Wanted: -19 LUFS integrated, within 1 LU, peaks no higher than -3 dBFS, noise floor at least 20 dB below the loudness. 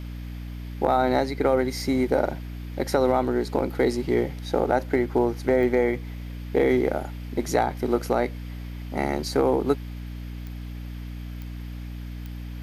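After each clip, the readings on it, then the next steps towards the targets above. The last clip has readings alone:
clicks found 4; hum 60 Hz; highest harmonic 300 Hz; hum level -32 dBFS; loudness -24.5 LUFS; peak level -8.0 dBFS; loudness target -19.0 LUFS
-> de-click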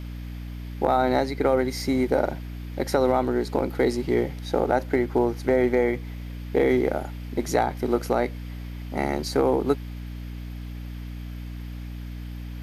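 clicks found 0; hum 60 Hz; highest harmonic 300 Hz; hum level -32 dBFS
-> de-hum 60 Hz, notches 5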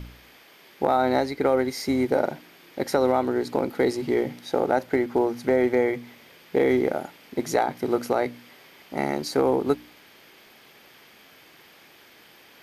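hum not found; loudness -25.0 LUFS; peak level -8.0 dBFS; loudness target -19.0 LUFS
-> trim +6 dB; peak limiter -3 dBFS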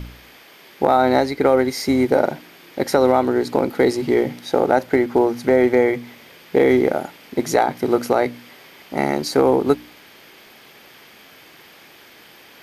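loudness -19.0 LUFS; peak level -3.0 dBFS; noise floor -47 dBFS

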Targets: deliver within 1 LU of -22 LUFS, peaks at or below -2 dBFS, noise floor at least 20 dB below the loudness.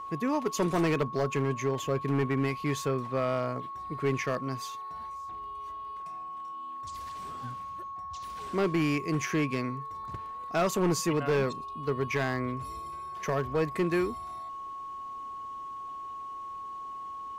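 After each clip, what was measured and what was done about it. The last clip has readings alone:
clipped samples 1.0%; clipping level -21.0 dBFS; steady tone 1.1 kHz; tone level -37 dBFS; loudness -32.0 LUFS; peak level -21.0 dBFS; loudness target -22.0 LUFS
-> clip repair -21 dBFS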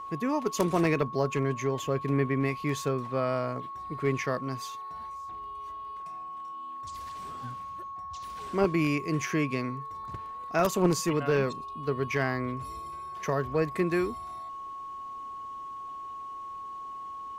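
clipped samples 0.0%; steady tone 1.1 kHz; tone level -37 dBFS
-> band-stop 1.1 kHz, Q 30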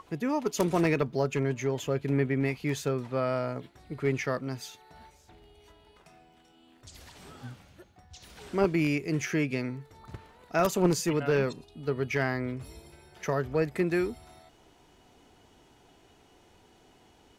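steady tone not found; loudness -29.5 LUFS; peak level -11.5 dBFS; loudness target -22.0 LUFS
-> trim +7.5 dB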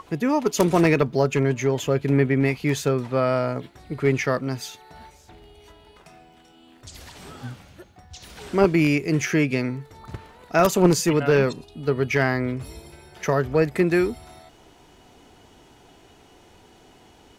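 loudness -22.0 LUFS; peak level -4.0 dBFS; noise floor -53 dBFS

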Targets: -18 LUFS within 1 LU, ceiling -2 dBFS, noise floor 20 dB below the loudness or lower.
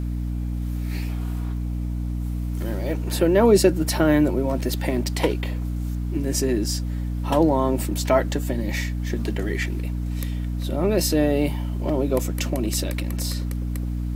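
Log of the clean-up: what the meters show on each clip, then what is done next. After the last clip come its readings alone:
hum 60 Hz; highest harmonic 300 Hz; hum level -24 dBFS; loudness -24.0 LUFS; peak level -4.5 dBFS; loudness target -18.0 LUFS
-> de-hum 60 Hz, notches 5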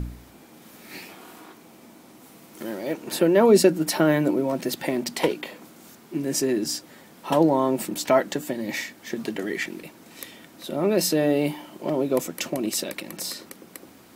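hum not found; loudness -24.0 LUFS; peak level -5.5 dBFS; loudness target -18.0 LUFS
-> trim +6 dB; peak limiter -2 dBFS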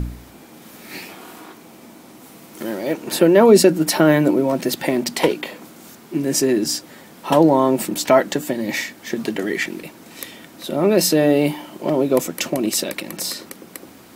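loudness -18.5 LUFS; peak level -2.0 dBFS; noise floor -44 dBFS

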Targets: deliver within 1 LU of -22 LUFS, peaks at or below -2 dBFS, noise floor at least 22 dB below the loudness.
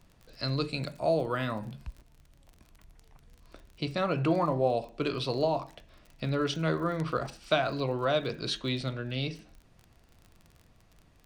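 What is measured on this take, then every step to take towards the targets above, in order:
tick rate 36 per s; loudness -30.5 LUFS; peak level -12.5 dBFS; loudness target -22.0 LUFS
-> de-click; trim +8.5 dB

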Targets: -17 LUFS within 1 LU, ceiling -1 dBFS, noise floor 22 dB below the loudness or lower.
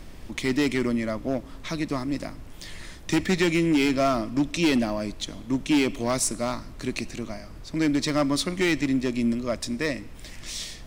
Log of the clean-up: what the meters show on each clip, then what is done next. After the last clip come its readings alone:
clipped samples 1.5%; clipping level -16.5 dBFS; noise floor -42 dBFS; noise floor target -48 dBFS; loudness -26.0 LUFS; peak level -16.5 dBFS; loudness target -17.0 LUFS
-> clip repair -16.5 dBFS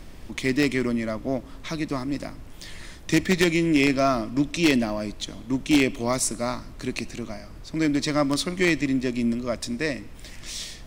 clipped samples 0.0%; noise floor -42 dBFS; noise floor target -47 dBFS
-> noise print and reduce 6 dB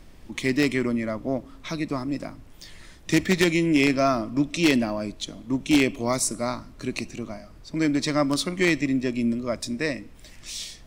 noise floor -47 dBFS; loudness -25.0 LUFS; peak level -7.5 dBFS; loudness target -17.0 LUFS
-> trim +8 dB; peak limiter -1 dBFS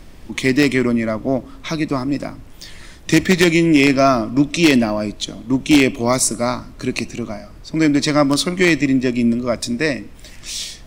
loudness -17.0 LUFS; peak level -1.0 dBFS; noise floor -39 dBFS

